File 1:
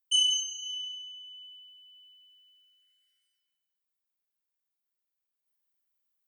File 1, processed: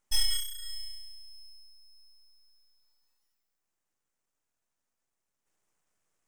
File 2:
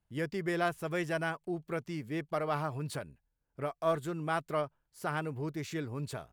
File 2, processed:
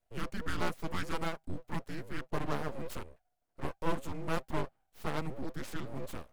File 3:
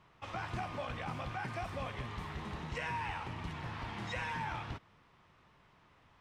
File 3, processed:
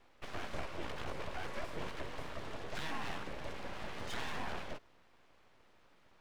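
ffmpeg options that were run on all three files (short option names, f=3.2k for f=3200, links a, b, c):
-af "aeval=exprs='0.178*(cos(1*acos(clip(val(0)/0.178,-1,1)))-cos(1*PI/2))+0.00316*(cos(6*acos(clip(val(0)/0.178,-1,1)))-cos(6*PI/2))':c=same,afreqshift=-400,aeval=exprs='abs(val(0))':c=same,volume=1dB"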